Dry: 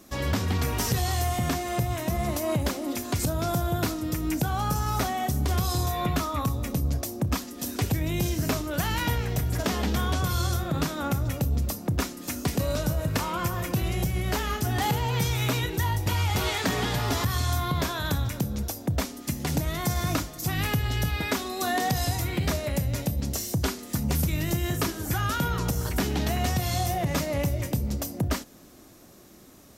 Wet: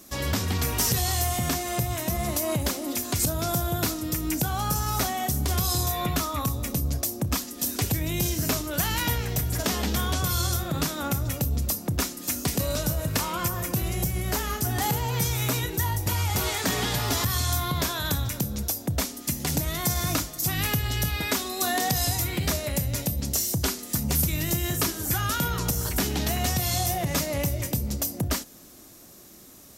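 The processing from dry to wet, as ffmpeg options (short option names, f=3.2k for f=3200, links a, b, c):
-filter_complex "[0:a]asettb=1/sr,asplit=3[a][b][c];[a]atrim=end=13.484[d];[b]atrim=start=13.48:end=16.67,asetpts=PTS-STARTPTS,afade=t=in:d=0.004:c=qsin,afade=t=out:st=3.186:d=0.004:c=qsin,equalizer=f=3.2k:t=o:w=1.3:g=-4.5[e];[c]atrim=start=16.666[f];[d][e]acrossfade=d=0.004:c1=hsin:c2=qsin[g];[g][f]acrossfade=d=0.004:c1=qsin:c2=hsin,highshelf=f=4.1k:g=9.5,volume=-1dB"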